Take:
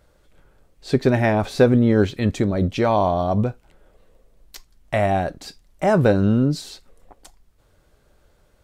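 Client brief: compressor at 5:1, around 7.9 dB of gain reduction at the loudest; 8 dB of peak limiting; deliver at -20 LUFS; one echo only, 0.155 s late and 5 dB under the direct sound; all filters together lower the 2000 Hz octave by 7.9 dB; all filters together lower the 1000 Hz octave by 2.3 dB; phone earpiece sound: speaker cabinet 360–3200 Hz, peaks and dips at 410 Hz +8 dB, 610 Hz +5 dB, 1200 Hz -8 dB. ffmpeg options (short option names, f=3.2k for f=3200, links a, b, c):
-af "equalizer=f=1k:t=o:g=-3.5,equalizer=f=2k:t=o:g=-7.5,acompressor=threshold=-20dB:ratio=5,alimiter=limit=-18dB:level=0:latency=1,highpass=360,equalizer=f=410:t=q:w=4:g=8,equalizer=f=610:t=q:w=4:g=5,equalizer=f=1.2k:t=q:w=4:g=-8,lowpass=f=3.2k:w=0.5412,lowpass=f=3.2k:w=1.3066,aecho=1:1:155:0.562,volume=7.5dB"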